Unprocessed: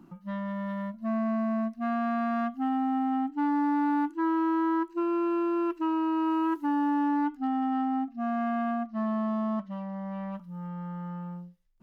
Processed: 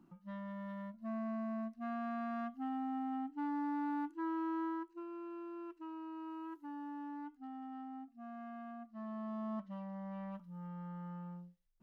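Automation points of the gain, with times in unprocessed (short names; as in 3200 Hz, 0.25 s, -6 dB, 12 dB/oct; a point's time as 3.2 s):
4.64 s -11.5 dB
5.07 s -19 dB
8.72 s -19 dB
9.7 s -9 dB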